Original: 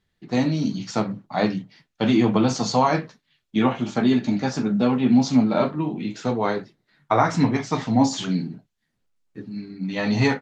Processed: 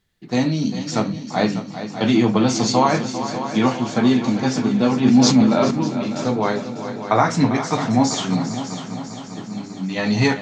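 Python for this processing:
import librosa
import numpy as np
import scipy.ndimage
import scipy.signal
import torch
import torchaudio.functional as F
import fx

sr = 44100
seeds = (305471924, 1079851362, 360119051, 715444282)

y = fx.high_shelf(x, sr, hz=6200.0, db=8.0)
y = fx.echo_heads(y, sr, ms=199, heads='second and third', feedback_pct=59, wet_db=-11.5)
y = fx.sustainer(y, sr, db_per_s=40.0, at=(4.97, 5.71))
y = y * librosa.db_to_amplitude(2.0)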